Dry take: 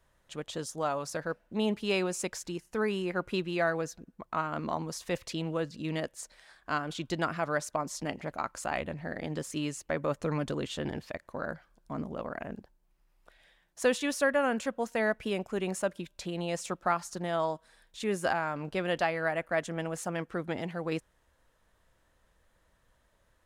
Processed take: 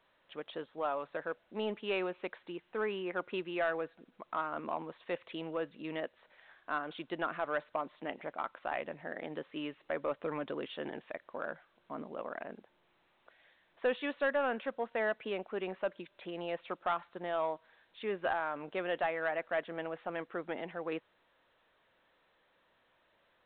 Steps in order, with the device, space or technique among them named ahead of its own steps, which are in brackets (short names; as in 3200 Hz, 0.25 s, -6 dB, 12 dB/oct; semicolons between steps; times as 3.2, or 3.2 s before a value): telephone (BPF 330–3200 Hz; soft clip -20.5 dBFS, distortion -18 dB; gain -2 dB; A-law 64 kbps 8000 Hz)